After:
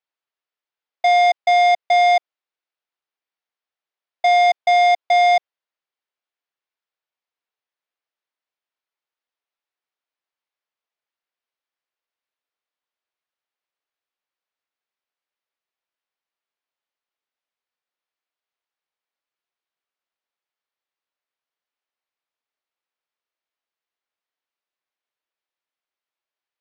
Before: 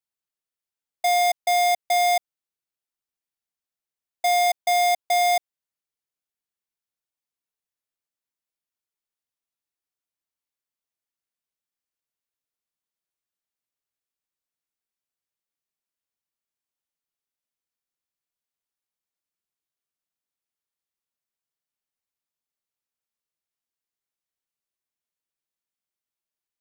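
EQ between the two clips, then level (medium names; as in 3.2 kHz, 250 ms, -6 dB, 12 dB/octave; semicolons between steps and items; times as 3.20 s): high-pass 470 Hz 12 dB/octave; low-pass 6.6 kHz 12 dB/octave; distance through air 170 m; +7.5 dB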